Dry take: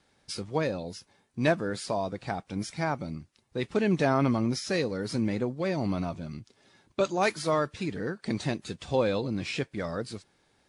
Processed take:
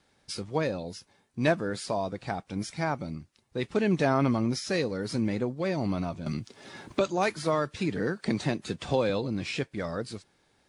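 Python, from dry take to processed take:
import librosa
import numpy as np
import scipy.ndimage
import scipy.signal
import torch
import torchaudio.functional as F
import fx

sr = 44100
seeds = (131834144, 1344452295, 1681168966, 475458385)

y = fx.band_squash(x, sr, depth_pct=70, at=(6.26, 9.1))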